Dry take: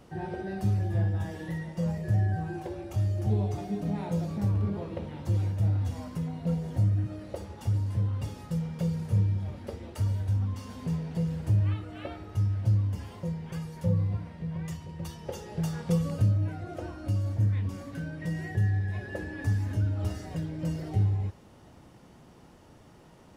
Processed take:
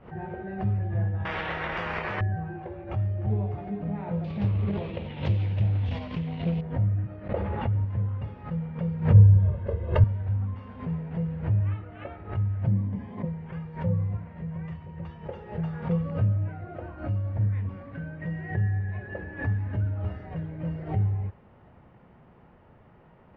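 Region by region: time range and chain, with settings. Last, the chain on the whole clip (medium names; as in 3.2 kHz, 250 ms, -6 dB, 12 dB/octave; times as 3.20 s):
1.25–2.21 s: transient shaper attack +2 dB, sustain +8 dB + spectrum-flattening compressor 10:1
4.24–6.61 s: resonant high shelf 2.2 kHz +14 dB, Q 1.5 + transient shaper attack +4 dB, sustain +10 dB + loudspeaker Doppler distortion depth 0.33 ms
7.29–7.85 s: low-pass 4.3 kHz 24 dB/octave + level flattener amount 70%
9.14–10.04 s: bass shelf 420 Hz +8.5 dB + band-stop 2.3 kHz, Q 7.8 + comb 1.9 ms, depth 85%
12.67–13.25 s: peaking EQ 210 Hz +14 dB 1.1 oct + comb of notches 1.4 kHz
whole clip: low-pass 2.4 kHz 24 dB/octave; peaking EQ 300 Hz -7 dB 0.39 oct; swell ahead of each attack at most 140 dB/s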